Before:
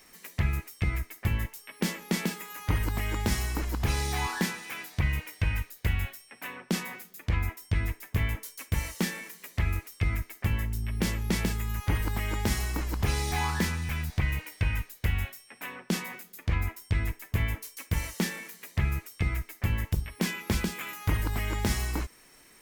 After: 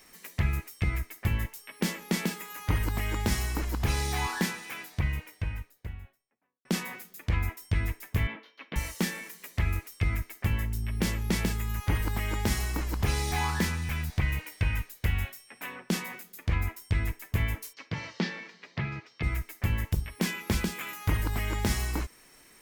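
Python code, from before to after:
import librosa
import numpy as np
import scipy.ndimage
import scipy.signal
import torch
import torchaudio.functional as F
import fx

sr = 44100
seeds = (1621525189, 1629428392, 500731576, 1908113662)

y = fx.studio_fade_out(x, sr, start_s=4.47, length_s=2.18)
y = fx.ellip_bandpass(y, sr, low_hz=200.0, high_hz=3500.0, order=3, stop_db=40, at=(8.27, 8.76))
y = fx.ellip_bandpass(y, sr, low_hz=120.0, high_hz=4800.0, order=3, stop_db=40, at=(17.72, 19.22), fade=0.02)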